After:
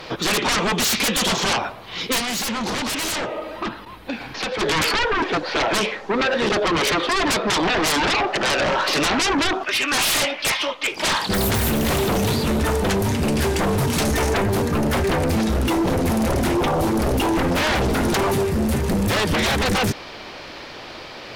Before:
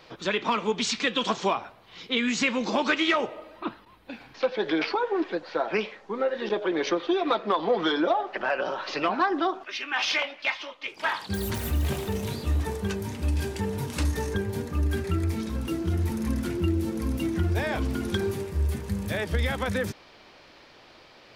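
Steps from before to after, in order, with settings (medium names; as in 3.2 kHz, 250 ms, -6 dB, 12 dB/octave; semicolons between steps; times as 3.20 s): sine folder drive 16 dB, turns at -12.5 dBFS; 2.18–4.61 s: compression 3:1, threshold -21 dBFS, peak gain reduction 5.5 dB; trim -4 dB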